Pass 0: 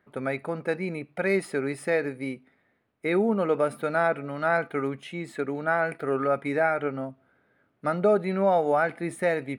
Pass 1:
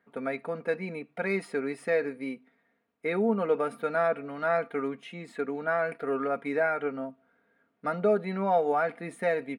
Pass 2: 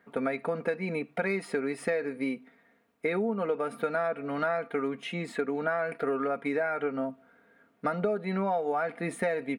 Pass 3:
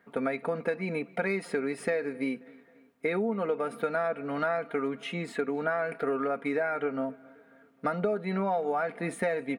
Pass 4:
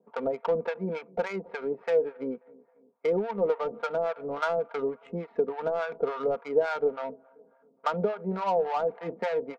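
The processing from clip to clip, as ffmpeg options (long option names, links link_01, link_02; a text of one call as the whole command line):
ffmpeg -i in.wav -af "highpass=frequency=170:poles=1,highshelf=frequency=6900:gain=-9,aecho=1:1:4.3:0.57,volume=-3.5dB" out.wav
ffmpeg -i in.wav -af "acompressor=threshold=-34dB:ratio=6,volume=7.5dB" out.wav
ffmpeg -i in.wav -filter_complex "[0:a]asplit=2[link_01][link_02];[link_02]adelay=267,lowpass=frequency=4200:poles=1,volume=-23.5dB,asplit=2[link_03][link_04];[link_04]adelay=267,lowpass=frequency=4200:poles=1,volume=0.52,asplit=2[link_05][link_06];[link_06]adelay=267,lowpass=frequency=4200:poles=1,volume=0.52[link_07];[link_01][link_03][link_05][link_07]amix=inputs=4:normalize=0" out.wav
ffmpeg -i in.wav -filter_complex "[0:a]highpass=frequency=170:width=0.5412,highpass=frequency=170:width=1.3066,equalizer=frequency=280:width_type=q:width=4:gain=-8,equalizer=frequency=490:width_type=q:width=4:gain=7,equalizer=frequency=940:width_type=q:width=4:gain=8,equalizer=frequency=1800:width_type=q:width=4:gain=-8,equalizer=frequency=2900:width_type=q:width=4:gain=-5,lowpass=frequency=3400:width=0.5412,lowpass=frequency=3400:width=1.3066,adynamicsmooth=sensitivity=2.5:basefreq=880,acrossover=split=710[link_01][link_02];[link_01]aeval=exprs='val(0)*(1-1/2+1/2*cos(2*PI*3.5*n/s))':channel_layout=same[link_03];[link_02]aeval=exprs='val(0)*(1-1/2-1/2*cos(2*PI*3.5*n/s))':channel_layout=same[link_04];[link_03][link_04]amix=inputs=2:normalize=0,volume=4.5dB" out.wav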